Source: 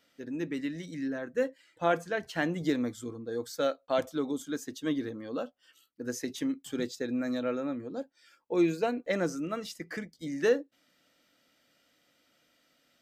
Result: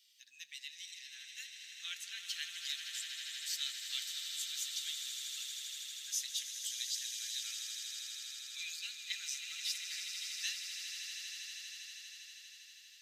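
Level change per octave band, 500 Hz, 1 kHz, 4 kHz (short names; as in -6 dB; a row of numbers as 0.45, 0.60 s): under -40 dB, -28.5 dB, +8.5 dB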